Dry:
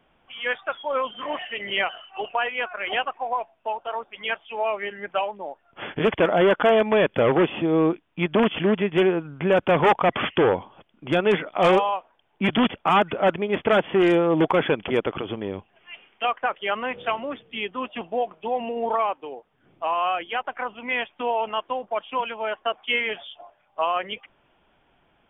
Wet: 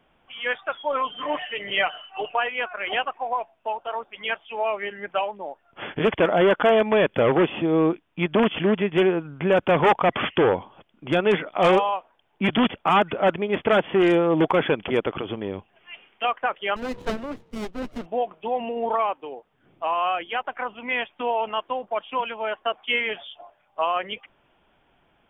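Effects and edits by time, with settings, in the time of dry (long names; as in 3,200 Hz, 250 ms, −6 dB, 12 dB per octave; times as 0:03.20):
0:00.83–0:02.40: comb filter 6.7 ms, depth 50%
0:16.76–0:18.06: windowed peak hold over 33 samples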